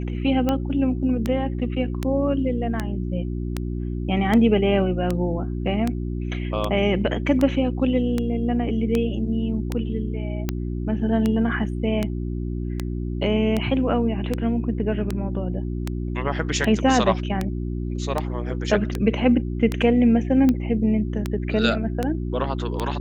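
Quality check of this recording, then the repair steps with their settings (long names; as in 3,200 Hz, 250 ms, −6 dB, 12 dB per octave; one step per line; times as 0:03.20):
mains hum 60 Hz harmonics 6 −27 dBFS
scratch tick 78 rpm −10 dBFS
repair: click removal
hum removal 60 Hz, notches 6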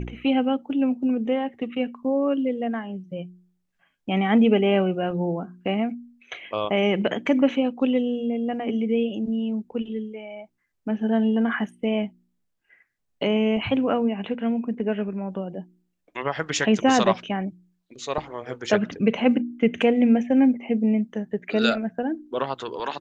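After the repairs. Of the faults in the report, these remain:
none of them is left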